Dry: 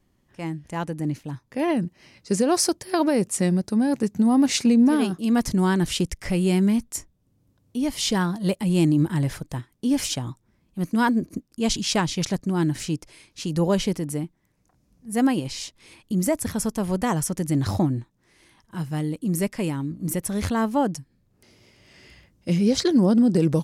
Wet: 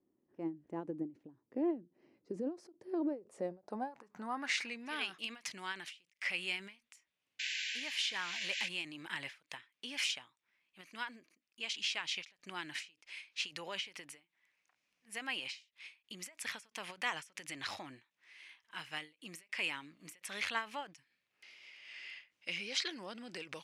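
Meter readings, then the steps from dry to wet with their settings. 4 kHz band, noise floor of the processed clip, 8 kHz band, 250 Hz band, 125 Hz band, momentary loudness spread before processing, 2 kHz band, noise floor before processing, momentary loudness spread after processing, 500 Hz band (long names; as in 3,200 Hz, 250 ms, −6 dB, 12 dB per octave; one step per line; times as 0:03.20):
−7.0 dB, −85 dBFS, −17.5 dB, −24.0 dB, −33.5 dB, 14 LU, −4.0 dB, −67 dBFS, 16 LU, −19.5 dB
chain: sound drawn into the spectrogram noise, 0:07.39–0:08.69, 1,500–7,700 Hz −39 dBFS
brickwall limiter −18.5 dBFS, peak gain reduction 9 dB
band-pass filter sweep 330 Hz → 2,500 Hz, 0:02.99–0:04.84
speech leveller within 4 dB 0.5 s
low-shelf EQ 320 Hz −9.5 dB
every ending faded ahead of time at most 210 dB per second
level +3.5 dB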